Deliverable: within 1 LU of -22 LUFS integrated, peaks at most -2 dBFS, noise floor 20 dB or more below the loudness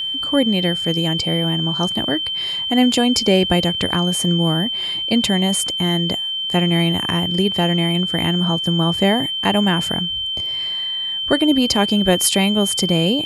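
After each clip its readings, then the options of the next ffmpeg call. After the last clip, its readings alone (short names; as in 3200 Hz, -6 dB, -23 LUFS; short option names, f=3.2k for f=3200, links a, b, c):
steady tone 3100 Hz; tone level -21 dBFS; loudness -17.5 LUFS; peak -2.0 dBFS; loudness target -22.0 LUFS
-> -af "bandreject=f=3.1k:w=30"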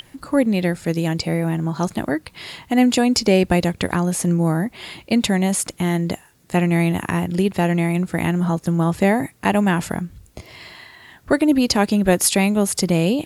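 steady tone none; loudness -19.5 LUFS; peak -3.0 dBFS; loudness target -22.0 LUFS
-> -af "volume=-2.5dB"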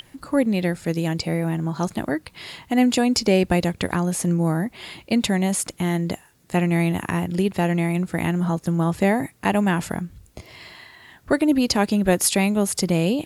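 loudness -22.0 LUFS; peak -5.5 dBFS; noise floor -55 dBFS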